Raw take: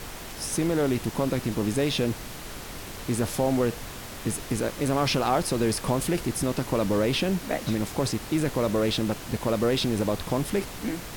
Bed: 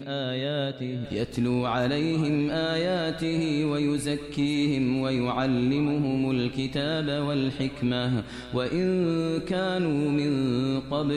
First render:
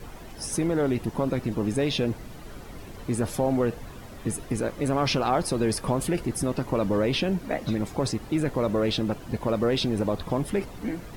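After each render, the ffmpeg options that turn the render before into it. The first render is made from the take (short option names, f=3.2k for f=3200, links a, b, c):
-af "afftdn=nr=12:nf=-39"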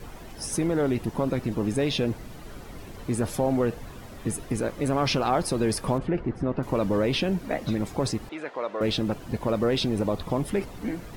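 -filter_complex "[0:a]asettb=1/sr,asplit=3[a][b][c];[a]atrim=end=5.984[d];[b]atrim=start=5.98:end=6.63,asetpts=PTS-STARTPTS,afade=t=in:d=0.004:c=qsin,afade=t=out:st=0.646:d=0.004:c=qsin,lowpass=1.8k[e];[c]atrim=start=6.626[f];[d][e]acrossfade=d=0.004:c1=hsin:c2=qsin[g];[g][f]acrossfade=d=0.004:c1=qsin:c2=hsin,asettb=1/sr,asplit=3[h][i][j];[h]atrim=end=8.294[k];[i]atrim=start=8.29:end=8.81,asetpts=PTS-STARTPTS,afade=t=in:d=0.004:c=qsin,afade=t=out:st=0.516:d=0.004:c=qsin,highpass=620,lowpass=3.6k[l];[j]atrim=start=8.806[m];[k][l]acrossfade=d=0.004:c1=hsin:c2=qsin[n];[n][m]acrossfade=d=0.004:c1=qsin:c2=hsin,asettb=1/sr,asplit=3[o][p][q];[o]atrim=end=9.904[r];[p]atrim=start=9.9:end=10.46,asetpts=PTS-STARTPTS,afade=t=in:d=0.004:c=qsin,afade=t=out:st=0.556:d=0.004:c=qsin,bandreject=f=1.6k:w=12[s];[q]atrim=start=10.456[t];[r][s]acrossfade=d=0.004:c1=hsin:c2=qsin[u];[u][t]acrossfade=d=0.004:c1=qsin:c2=hsin"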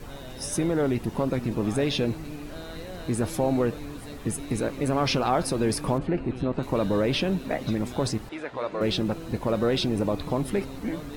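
-filter_complex "[1:a]volume=-14.5dB[a];[0:a][a]amix=inputs=2:normalize=0"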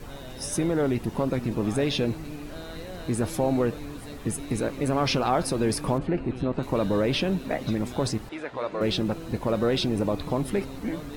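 -af anull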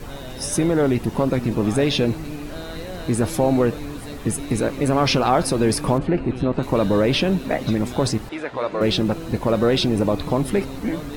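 -af "volume=6dB"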